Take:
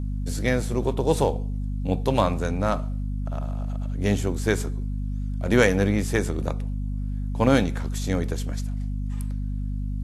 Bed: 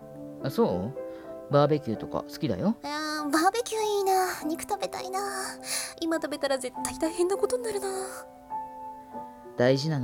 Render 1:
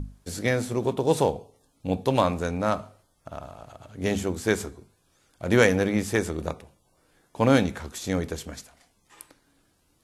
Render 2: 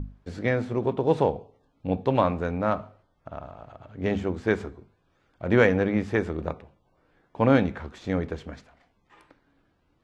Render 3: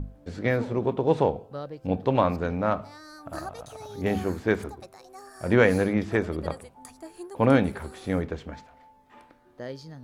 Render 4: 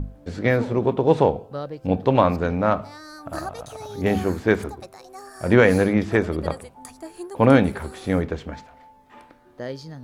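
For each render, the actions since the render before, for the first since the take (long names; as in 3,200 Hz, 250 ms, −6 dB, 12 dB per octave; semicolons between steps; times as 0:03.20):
mains-hum notches 50/100/150/200/250 Hz
low-pass filter 2,400 Hz 12 dB per octave
mix in bed −15 dB
level +5 dB; brickwall limiter −3 dBFS, peak gain reduction 2.5 dB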